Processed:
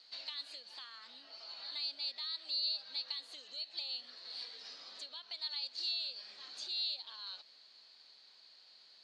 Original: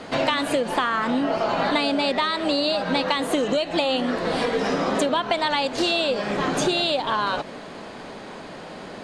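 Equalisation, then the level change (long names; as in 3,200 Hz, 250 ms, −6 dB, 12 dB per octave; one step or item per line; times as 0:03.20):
resonant band-pass 4,400 Hz, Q 9.4
−3.5 dB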